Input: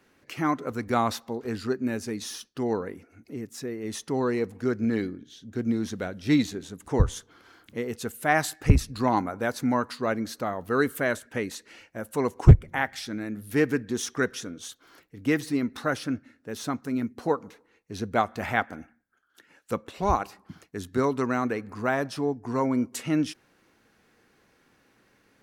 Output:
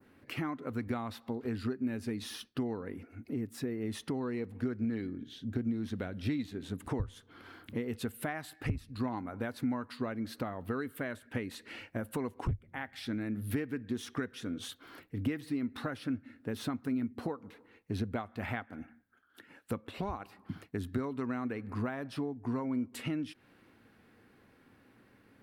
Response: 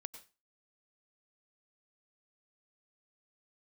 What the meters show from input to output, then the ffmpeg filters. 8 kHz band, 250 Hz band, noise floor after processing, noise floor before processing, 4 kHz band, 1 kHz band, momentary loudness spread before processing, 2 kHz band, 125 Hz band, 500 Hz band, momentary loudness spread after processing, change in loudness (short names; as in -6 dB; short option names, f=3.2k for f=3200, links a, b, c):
-13.5 dB, -7.0 dB, -64 dBFS, -65 dBFS, -8.0 dB, -14.0 dB, 14 LU, -11.5 dB, -11.5 dB, -11.5 dB, 8 LU, -10.0 dB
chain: -filter_complex "[0:a]adynamicequalizer=threshold=0.00562:dfrequency=3100:dqfactor=0.74:tfrequency=3100:tqfactor=0.74:attack=5:release=100:ratio=0.375:range=2.5:mode=boostabove:tftype=bell,dynaudnorm=f=410:g=31:m=11.5dB,asplit=2[a][b];[1:a]atrim=start_sample=2205,atrim=end_sample=3528,lowpass=3k[c];[b][c]afir=irnorm=-1:irlink=0,volume=-8.5dB[d];[a][d]amix=inputs=2:normalize=0,acompressor=threshold=-33dB:ratio=10,equalizer=f=100:t=o:w=0.67:g=8,equalizer=f=250:t=o:w=0.67:g=6,equalizer=f=6.3k:t=o:w=0.67:g=-10,volume=-2.5dB"